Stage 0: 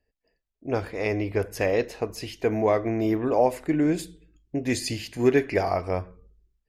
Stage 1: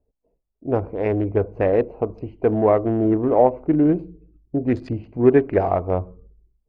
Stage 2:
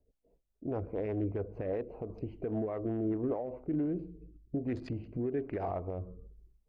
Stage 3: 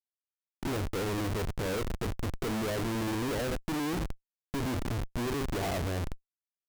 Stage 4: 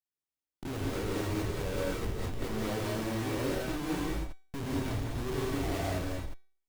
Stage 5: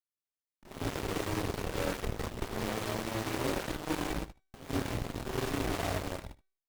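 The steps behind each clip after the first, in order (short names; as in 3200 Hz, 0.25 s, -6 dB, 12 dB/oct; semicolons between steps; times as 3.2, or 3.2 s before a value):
Wiener smoothing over 25 samples; LPF 1400 Hz 12 dB/oct; gain +6 dB
compressor 2:1, threshold -33 dBFS, peak gain reduction 13.5 dB; limiter -24.5 dBFS, peak gain reduction 8.5 dB; rotary speaker horn 5 Hz, later 1.2 Hz, at 3.45
Schmitt trigger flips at -40.5 dBFS; gain +5 dB
resonator 380 Hz, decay 0.47 s, mix 60%; in parallel at -8.5 dB: decimation with a swept rate 38×, swing 100% 2.9 Hz; on the sum: non-linear reverb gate 0.23 s rising, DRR -3.5 dB
added harmonics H 7 -14 dB, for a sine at -20.5 dBFS; echo 77 ms -18.5 dB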